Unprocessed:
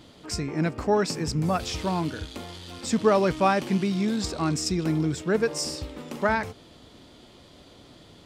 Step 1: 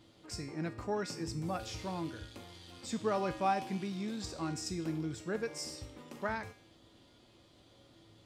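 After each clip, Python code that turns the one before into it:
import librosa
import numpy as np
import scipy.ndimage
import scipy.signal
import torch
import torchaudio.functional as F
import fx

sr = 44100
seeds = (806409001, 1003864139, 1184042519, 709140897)

y = fx.comb_fb(x, sr, f0_hz=110.0, decay_s=0.55, harmonics='odd', damping=0.0, mix_pct=80)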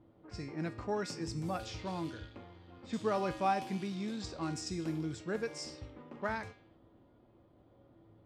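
y = fx.env_lowpass(x, sr, base_hz=910.0, full_db=-33.0)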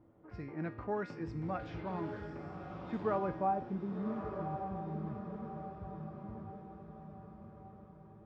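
y = fx.filter_sweep_lowpass(x, sr, from_hz=1800.0, to_hz=150.0, start_s=3.04, end_s=4.44, q=1.0)
y = fx.echo_diffused(y, sr, ms=1154, feedback_pct=50, wet_db=-6.5)
y = y * 10.0 ** (-1.5 / 20.0)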